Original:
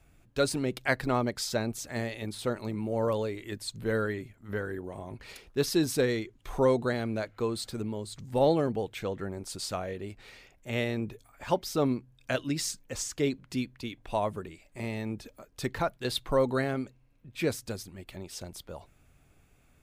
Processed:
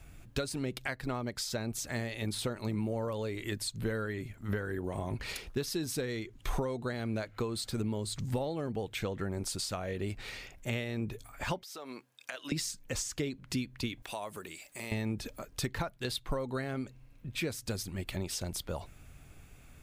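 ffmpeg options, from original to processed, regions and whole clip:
-filter_complex "[0:a]asettb=1/sr,asplit=3[a][b][c];[a]atrim=end=11.634[d];[b]atrim=start=11.63:end=12.52,asetpts=PTS-STARTPTS,afade=t=in:d=0.004:c=qsin,afade=t=out:st=0.886:d=0.004:c=qsin,highpass=610,acompressor=threshold=-43dB:ratio=12:attack=3.2:release=140:knee=1:detection=peak[e];[c]atrim=start=12.516[f];[d][e]acrossfade=d=0.004:c1=hsin:c2=qsin[g];[g][f]acrossfade=d=0.004:c1=qsin:c2=hsin,asettb=1/sr,asplit=3[h][i][j];[h]atrim=end=14.024[k];[i]atrim=start=14.02:end=14.92,asetpts=PTS-STARTPTS,afade=t=in:d=0.004:c=qsin,afade=t=out:st=0.896:d=0.004:c=qsin,highpass=f=500:p=1,highshelf=f=6.1k:g=11,acompressor=threshold=-50dB:ratio=2:attack=3.2:release=140:knee=1:detection=peak[l];[j]atrim=start=14.916[m];[k][l]acrossfade=d=0.004:c1=hsin:c2=qsin[n];[n][m]acrossfade=d=0.004:c1=qsin:c2=hsin,tiltshelf=f=840:g=-3.5,acompressor=threshold=-39dB:ratio=10,lowshelf=f=250:g=8.5,volume=5dB"

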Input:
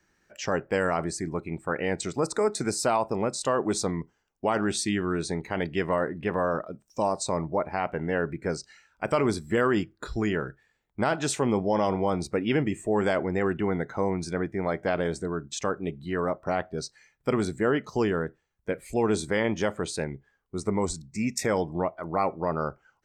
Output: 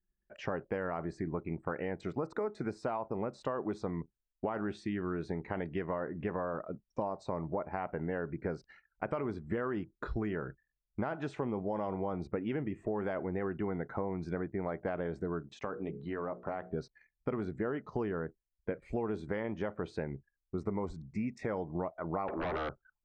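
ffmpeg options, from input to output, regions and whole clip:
-filter_complex "[0:a]asettb=1/sr,asplit=3[a][b][c];[a]atrim=end=15.424[d];[b]atrim=start=15.42:end=16.71,asetpts=PTS-STARTPTS,afade=t=in:d=0.004:c=qsin,afade=t=out:st=1.286:d=0.004:c=qsin,highpass=f=150:p=1,bandreject=f=60:t=h:w=6,bandreject=f=120:t=h:w=6,bandreject=f=180:t=h:w=6,bandreject=f=240:t=h:w=6,bandreject=f=300:t=h:w=6,bandreject=f=360:t=h:w=6,bandreject=f=420:t=h:w=6,bandreject=f=480:t=h:w=6,acompressor=threshold=-33dB:ratio=2.5:attack=3.2:release=140:knee=1:detection=peak[e];[c]atrim=start=16.706[f];[d][e]acrossfade=d=0.004:c1=hsin:c2=qsin[g];[g][f]acrossfade=d=0.004:c1=qsin:c2=hsin,asettb=1/sr,asplit=3[h][i][j];[h]atrim=end=22.284[k];[i]atrim=start=22.28:end=22.69,asetpts=PTS-STARTPTS,afade=t=in:d=0.004:c=qsin,afade=t=out:st=0.406:d=0.004:c=qsin,highpass=280,acompressor=threshold=-34dB:ratio=4:attack=3.2:release=140:knee=1:detection=peak,aeval=exprs='0.0596*sin(PI/2*5.01*val(0)/0.0596)':c=same[l];[j]atrim=start=22.686[m];[k][l]acrossfade=d=0.004:c1=hsin:c2=qsin[n];[n][m]acrossfade=d=0.004:c1=qsin:c2=hsin,acompressor=threshold=-32dB:ratio=6,anlmdn=0.000398,lowpass=1.8k"

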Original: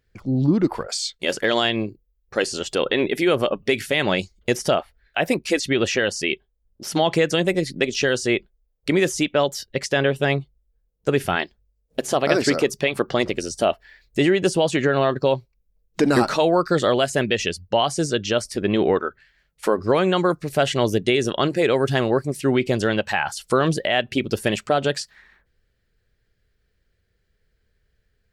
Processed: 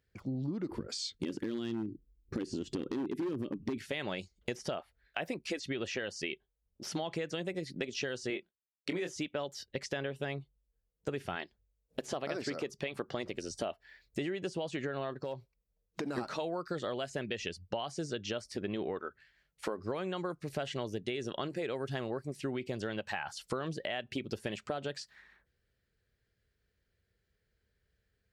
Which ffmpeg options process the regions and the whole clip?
-filter_complex "[0:a]asettb=1/sr,asplit=3[a][b][c];[a]atrim=end=0.694[d];[b]atrim=start=0.69:end=3.78,asetpts=PTS-STARTPTS,afade=t=in:d=0.004:c=qsin,afade=t=out:st=3.086:d=0.004:c=qsin,lowshelf=f=450:t=q:w=3:g=14,acompressor=threshold=-22dB:ratio=2:attack=3.2:release=140:knee=1:detection=peak,aeval=exprs='0.282*(abs(mod(val(0)/0.282+3,4)-2)-1)':c=same[e];[c]atrim=start=3.776[f];[d][e]acrossfade=d=0.004:c1=hsin:c2=qsin[g];[g][f]acrossfade=d=0.004:c1=qsin:c2=hsin,asettb=1/sr,asplit=3[h][i][j];[h]atrim=end=8.304[k];[i]atrim=start=8.3:end=9.16,asetpts=PTS-STARTPTS,afade=t=in:d=0.004:c=qsin,afade=t=out:st=0.856:d=0.004:c=qsin,agate=range=-33dB:threshold=-54dB:ratio=3:release=100:detection=peak,highpass=170,asplit=2[l][m];[m]adelay=23,volume=-6dB[n];[l][n]amix=inputs=2:normalize=0,atrim=end_sample=37926[o];[j]atrim=start=9.156[p];[k][o]acrossfade=d=0.004:c1=hsin:c2=qsin[q];[q][p]acrossfade=d=0.004:c1=qsin:c2=hsin,asettb=1/sr,asplit=3[r][s][t];[r]atrim=end=15.134[u];[s]atrim=start=15.13:end=16.18,asetpts=PTS-STARTPTS,afade=t=in:d=0.004:c=qsin,afade=t=out:st=1.046:d=0.004:c=qsin,equalizer=f=710:t=o:w=2.1:g=3,acompressor=threshold=-25dB:ratio=3:attack=3.2:release=140:knee=1:detection=peak,asoftclip=type=hard:threshold=-18dB[v];[t]atrim=start=16.176[w];[u][v]acrossfade=d=0.004:c1=hsin:c2=qsin[x];[x][w]acrossfade=d=0.004:c1=qsin:c2=hsin,acrossover=split=6800[y][z];[z]acompressor=threshold=-48dB:ratio=4:attack=1:release=60[aa];[y][aa]amix=inputs=2:normalize=0,highpass=51,acompressor=threshold=-26dB:ratio=6,volume=-7.5dB"

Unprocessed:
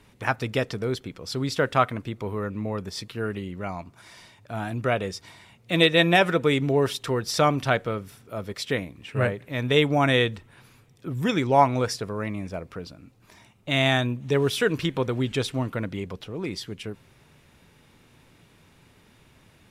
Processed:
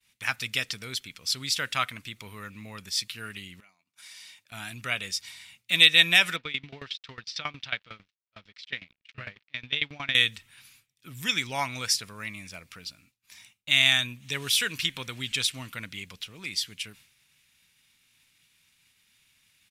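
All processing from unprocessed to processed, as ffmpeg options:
-filter_complex "[0:a]asettb=1/sr,asplit=3[a][b][c];[a]atrim=end=3.604[d];[b]atrim=start=3.6:end=4.52,asetpts=PTS-STARTPTS,afade=t=in:d=0.004:c=qsin,afade=t=out:st=0.916:d=0.004:c=qsin,highpass=200,acompressor=threshold=-47dB:ratio=8:attack=3.2:release=140:knee=1:detection=peak[e];[c]atrim=start=4.516[f];[d][e]acrossfade=d=0.004:c1=hsin:c2=qsin[g];[g][f]acrossfade=d=0.004:c1=qsin:c2=hsin,asettb=1/sr,asplit=3[h][i][j];[h]atrim=end=6.364[k];[i]atrim=start=6.36:end=10.15,asetpts=PTS-STARTPTS,afade=t=in:d=0.004:c=qsin,afade=t=out:st=3.786:d=0.004:c=qsin,aeval=exprs='sgn(val(0))*max(abs(val(0))-0.00668,0)':c=same,lowpass=f=4.4k:w=0.5412,lowpass=f=4.4k:w=1.3066,aeval=exprs='val(0)*pow(10,-20*if(lt(mod(11*n/s,1),2*abs(11)/1000),1-mod(11*n/s,1)/(2*abs(11)/1000),(mod(11*n/s,1)-2*abs(11)/1000)/(1-2*abs(11)/1000))/20)':c=same[l];[j]atrim=start=10.146[m];[k][l]acrossfade=d=0.004:c1=hsin:c2=qsin[n];[n][m]acrossfade=d=0.004:c1=qsin:c2=hsin,firequalizer=gain_entry='entry(220,0);entry(380,-7);entry(1300,6);entry(2300,15);entry(6700,13)':delay=0.05:min_phase=1,agate=range=-33dB:threshold=-41dB:ratio=3:detection=peak,highshelf=f=3.4k:g=9.5,volume=-13dB"

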